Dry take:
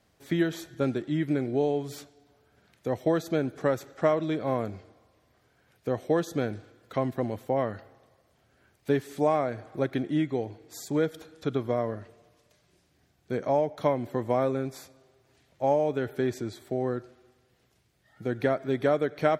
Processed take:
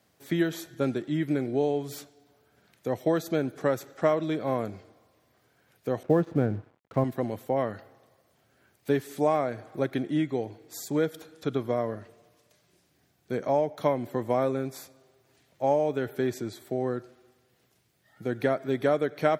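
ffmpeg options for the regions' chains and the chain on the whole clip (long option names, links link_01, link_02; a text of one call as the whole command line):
ffmpeg -i in.wav -filter_complex "[0:a]asettb=1/sr,asplit=3[link_01][link_02][link_03];[link_01]atrim=end=6.034[link_04];[link_02]atrim=start=6.03:end=7.04,asetpts=PTS-STARTPTS,afade=type=in:duration=0.004:curve=qsin,afade=type=out:start_time=1.006:duration=0.004:curve=qsin,lowpass=1600,equalizer=frequency=60:width=0.34:gain=12.5,aeval=exprs='sgn(val(0))*max(abs(val(0))-0.00355,0)':channel_layout=same[link_05];[link_03]atrim=start=7.036[link_06];[link_04][link_05]acrossfade=duration=0.004:curve1=hsin:curve2=qsin[link_07];[link_07][link_06]acrossfade=duration=0.004:curve1=qsin:curve2=hsin,highpass=100,highshelf=frequency=12000:gain=10.5" out.wav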